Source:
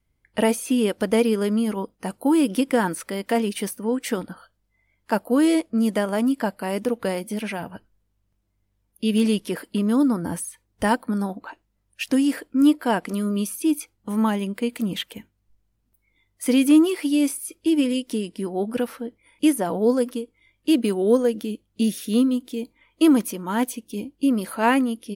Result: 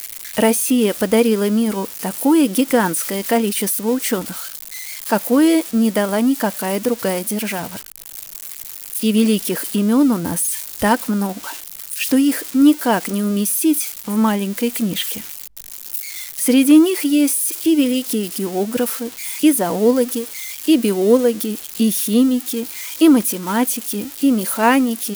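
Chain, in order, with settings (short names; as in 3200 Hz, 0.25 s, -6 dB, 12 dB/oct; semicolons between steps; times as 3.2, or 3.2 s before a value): switching spikes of -23.5 dBFS; gain +5 dB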